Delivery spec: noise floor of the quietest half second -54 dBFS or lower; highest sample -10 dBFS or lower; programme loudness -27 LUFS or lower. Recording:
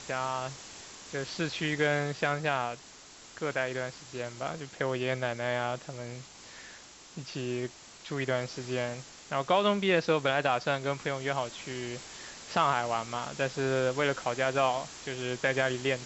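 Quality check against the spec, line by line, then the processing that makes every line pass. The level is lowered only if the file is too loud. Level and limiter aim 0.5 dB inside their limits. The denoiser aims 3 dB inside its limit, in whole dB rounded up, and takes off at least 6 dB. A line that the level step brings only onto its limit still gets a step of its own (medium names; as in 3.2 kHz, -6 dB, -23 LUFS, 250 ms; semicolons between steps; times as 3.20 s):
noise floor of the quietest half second -51 dBFS: fail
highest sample -11.5 dBFS: pass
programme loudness -31.0 LUFS: pass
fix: noise reduction 6 dB, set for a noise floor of -51 dBFS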